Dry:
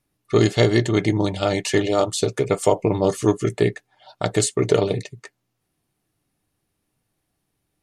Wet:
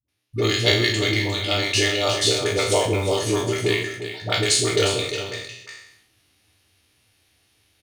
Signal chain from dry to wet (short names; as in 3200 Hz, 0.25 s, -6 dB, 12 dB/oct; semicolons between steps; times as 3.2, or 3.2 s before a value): spectral trails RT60 0.58 s; resonant low shelf 120 Hz +7.5 dB, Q 3; notch 7600 Hz, Q 8.7; echo 0.355 s -10 dB; AGC gain up to 12.5 dB; weighting filter D; in parallel at -6.5 dB: short-mantissa float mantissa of 2-bit; on the sum: dispersion highs, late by 84 ms, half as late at 380 Hz; sustainer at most 70 dB/s; gain -10 dB